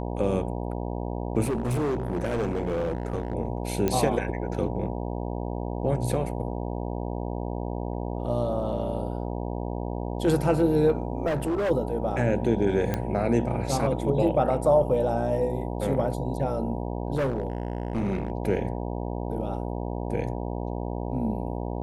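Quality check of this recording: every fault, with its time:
buzz 60 Hz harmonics 16 -31 dBFS
1.43–3.35 clipped -23 dBFS
3.88 pop -11 dBFS
11.26–11.71 clipped -23 dBFS
12.94 pop -13 dBFS
17.16–18.32 clipped -22.5 dBFS

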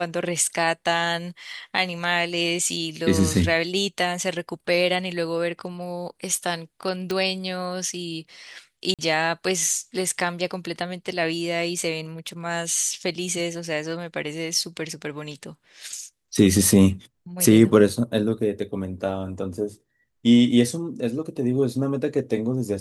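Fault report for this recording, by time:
7.11 pop -13 dBFS
8.94–8.99 gap 47 ms

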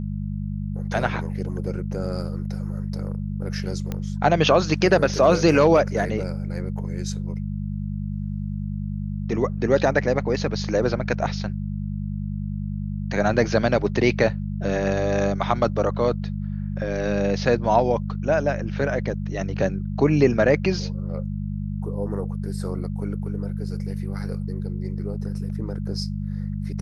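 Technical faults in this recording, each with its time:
hum 50 Hz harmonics 4 -28 dBFS
3.92 pop -15 dBFS

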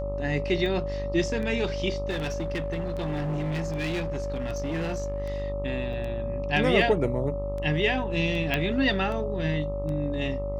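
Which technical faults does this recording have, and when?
buzz 50 Hz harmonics 26 -33 dBFS
tick 78 rpm -25 dBFS
tone 570 Hz -31 dBFS
2.09–5.42 clipped -25.5 dBFS
5.93 gap 3.4 ms
8.54 pop -12 dBFS

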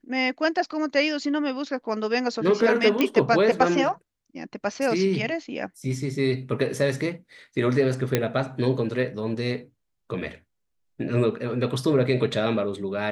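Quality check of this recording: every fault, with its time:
3.01 pop -9 dBFS
8.15 pop -6 dBFS

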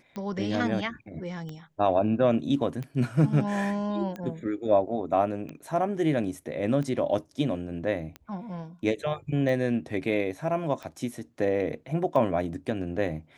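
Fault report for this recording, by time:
tick 45 rpm -24 dBFS

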